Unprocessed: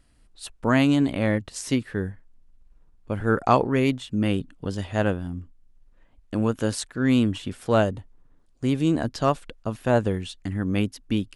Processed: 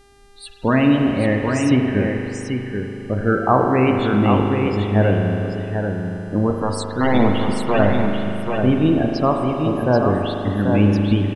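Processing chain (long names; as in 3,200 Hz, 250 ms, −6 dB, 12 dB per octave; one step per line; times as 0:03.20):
in parallel at +2 dB: brickwall limiter −13 dBFS, peak gain reduction 8 dB
0:06.50–0:07.79: on the sum: wrap-around overflow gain 8.5 dB
spectral peaks only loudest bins 32
spring reverb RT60 3.4 s, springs 39 ms, chirp 70 ms, DRR 2 dB
hum with harmonics 400 Hz, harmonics 29, −52 dBFS −5 dB per octave
on a send: single-tap delay 786 ms −5 dB
on the sum: level −1.5 dB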